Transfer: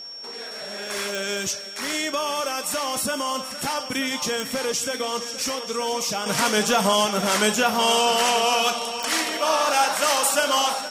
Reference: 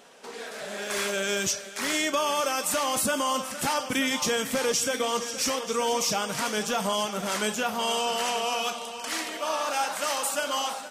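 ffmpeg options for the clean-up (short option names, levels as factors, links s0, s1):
-af "adeclick=t=4,bandreject=f=5500:w=30,asetnsamples=n=441:p=0,asendcmd='6.26 volume volume -7.5dB',volume=1"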